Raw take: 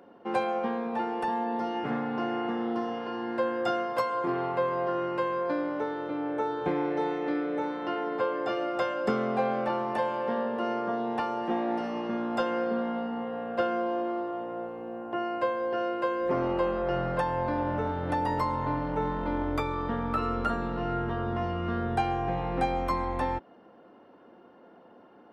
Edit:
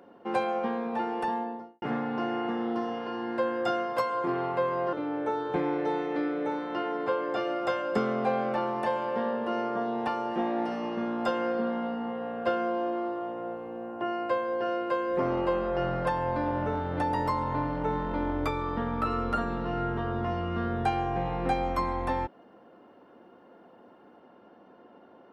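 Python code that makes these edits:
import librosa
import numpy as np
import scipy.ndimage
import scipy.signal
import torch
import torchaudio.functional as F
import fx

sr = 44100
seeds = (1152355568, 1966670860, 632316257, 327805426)

y = fx.studio_fade_out(x, sr, start_s=1.25, length_s=0.57)
y = fx.edit(y, sr, fx.cut(start_s=4.93, length_s=1.12), tone=tone)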